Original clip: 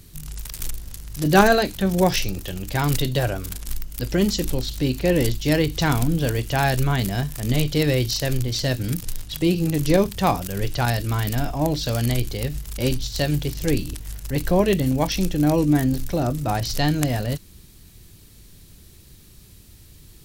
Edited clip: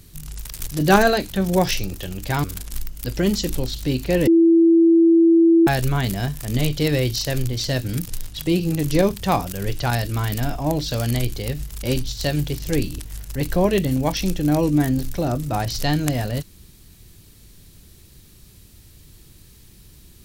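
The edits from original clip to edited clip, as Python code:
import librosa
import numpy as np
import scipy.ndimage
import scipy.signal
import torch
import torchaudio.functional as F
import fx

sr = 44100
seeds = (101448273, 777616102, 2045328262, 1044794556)

y = fx.edit(x, sr, fx.cut(start_s=0.67, length_s=0.45),
    fx.cut(start_s=2.89, length_s=0.5),
    fx.bleep(start_s=5.22, length_s=1.4, hz=332.0, db=-10.0), tone=tone)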